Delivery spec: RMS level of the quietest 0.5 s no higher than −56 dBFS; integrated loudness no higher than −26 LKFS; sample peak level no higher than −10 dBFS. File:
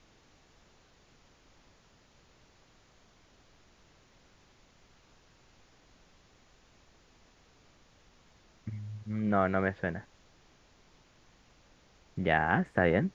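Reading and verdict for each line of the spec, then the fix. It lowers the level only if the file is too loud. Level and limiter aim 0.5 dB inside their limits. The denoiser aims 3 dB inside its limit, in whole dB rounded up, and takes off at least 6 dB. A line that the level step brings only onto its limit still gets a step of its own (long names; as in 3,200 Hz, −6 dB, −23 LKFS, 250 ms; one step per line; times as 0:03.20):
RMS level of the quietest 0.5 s −63 dBFS: in spec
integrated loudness −31.0 LKFS: in spec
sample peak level −11.0 dBFS: in spec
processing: no processing needed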